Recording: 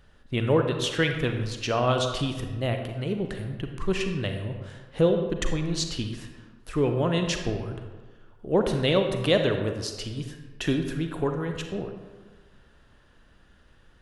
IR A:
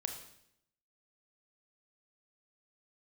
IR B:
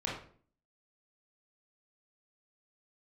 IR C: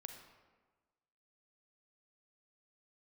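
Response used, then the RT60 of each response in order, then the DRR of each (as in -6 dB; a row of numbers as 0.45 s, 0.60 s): C; 0.75 s, 0.50 s, 1.4 s; 4.0 dB, -5.0 dB, 5.0 dB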